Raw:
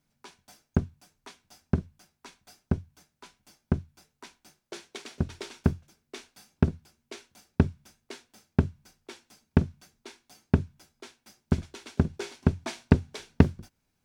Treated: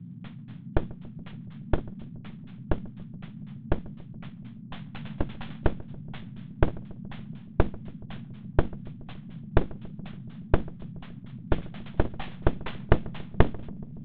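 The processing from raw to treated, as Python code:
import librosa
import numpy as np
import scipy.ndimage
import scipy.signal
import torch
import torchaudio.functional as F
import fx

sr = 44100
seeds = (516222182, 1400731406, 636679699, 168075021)

p1 = fx.cvsd(x, sr, bps=32000)
p2 = np.abs(p1)
p3 = fx.dmg_noise_band(p2, sr, seeds[0], low_hz=110.0, high_hz=230.0, level_db=-44.0)
p4 = scipy.signal.sosfilt(scipy.signal.ellip(4, 1.0, 40, 3500.0, 'lowpass', fs=sr, output='sos'), p3)
p5 = p4 + fx.echo_filtered(p4, sr, ms=141, feedback_pct=74, hz=1100.0, wet_db=-20.5, dry=0)
y = F.gain(torch.from_numpy(p5), 3.0).numpy()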